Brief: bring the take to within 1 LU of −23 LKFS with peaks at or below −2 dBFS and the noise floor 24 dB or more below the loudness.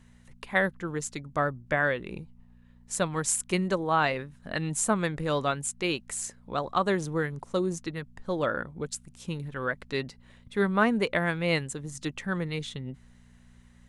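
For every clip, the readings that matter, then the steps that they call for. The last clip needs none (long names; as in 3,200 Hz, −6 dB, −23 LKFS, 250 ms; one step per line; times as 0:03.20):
mains hum 60 Hz; hum harmonics up to 240 Hz; level of the hum −55 dBFS; integrated loudness −29.5 LKFS; sample peak −10.5 dBFS; target loudness −23.0 LKFS
→ hum removal 60 Hz, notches 4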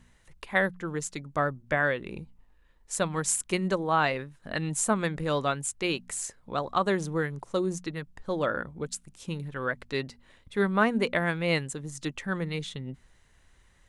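mains hum none found; integrated loudness −29.5 LKFS; sample peak −10.5 dBFS; target loudness −23.0 LKFS
→ level +6.5 dB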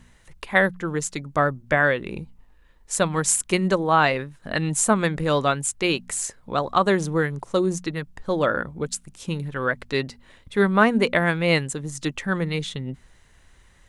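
integrated loudness −23.0 LKFS; sample peak −4.0 dBFS; background noise floor −55 dBFS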